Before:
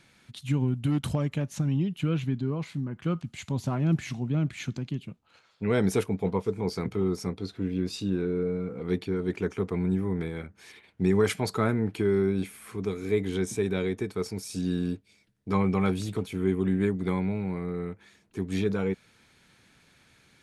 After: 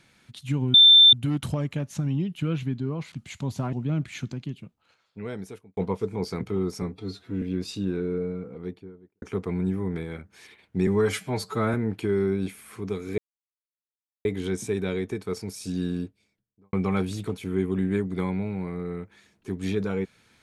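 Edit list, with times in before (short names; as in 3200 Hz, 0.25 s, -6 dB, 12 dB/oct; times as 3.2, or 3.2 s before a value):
0.74 add tone 3560 Hz -9.5 dBFS 0.39 s
2.73–3.2 cut
3.81–4.18 cut
4.73–6.22 fade out
7.27–7.67 stretch 1.5×
8.31–9.47 studio fade out
11.12–11.7 stretch 1.5×
13.14 insert silence 1.07 s
14.74–15.62 studio fade out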